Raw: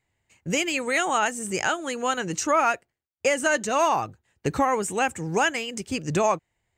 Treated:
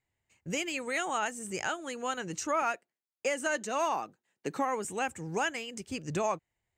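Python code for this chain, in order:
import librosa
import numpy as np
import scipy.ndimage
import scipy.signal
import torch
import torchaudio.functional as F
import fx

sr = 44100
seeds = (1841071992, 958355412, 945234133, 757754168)

y = fx.highpass(x, sr, hz=180.0, slope=24, at=(2.62, 4.85))
y = F.gain(torch.from_numpy(y), -8.5).numpy()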